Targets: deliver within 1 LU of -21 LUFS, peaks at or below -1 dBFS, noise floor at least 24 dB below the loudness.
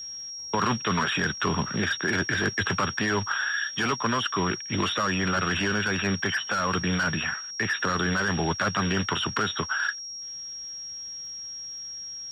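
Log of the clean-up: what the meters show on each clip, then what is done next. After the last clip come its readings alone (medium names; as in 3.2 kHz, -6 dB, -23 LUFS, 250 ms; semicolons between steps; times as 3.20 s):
tick rate 55 per s; steady tone 5.6 kHz; tone level -35 dBFS; loudness -27.0 LUFS; peak level -12.5 dBFS; loudness target -21.0 LUFS
-> de-click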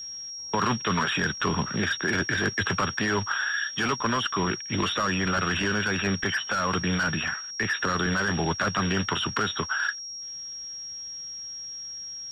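tick rate 0.57 per s; steady tone 5.6 kHz; tone level -35 dBFS
-> band-stop 5.6 kHz, Q 30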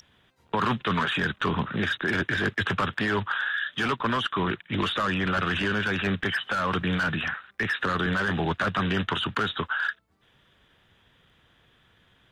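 steady tone not found; loudness -26.5 LUFS; peak level -13.0 dBFS; loudness target -21.0 LUFS
-> trim +5.5 dB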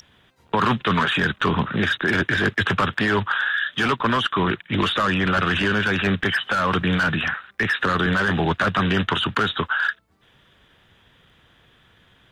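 loudness -21.0 LUFS; peak level -7.5 dBFS; noise floor -58 dBFS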